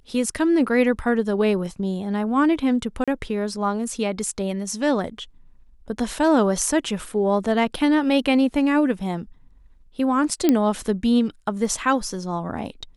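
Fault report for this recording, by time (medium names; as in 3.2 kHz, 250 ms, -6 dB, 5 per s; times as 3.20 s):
3.04–3.08 s: dropout 36 ms
10.49 s: pop -5 dBFS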